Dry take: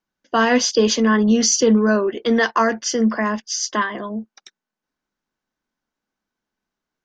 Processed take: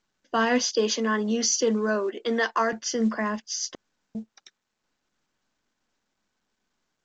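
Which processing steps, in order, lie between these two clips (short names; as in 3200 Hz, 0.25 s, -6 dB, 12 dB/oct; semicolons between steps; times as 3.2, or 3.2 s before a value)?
0.7–2.73 HPF 260 Hz 12 dB/oct; 3.75–4.15 room tone; gain -6.5 dB; µ-law 128 kbps 16000 Hz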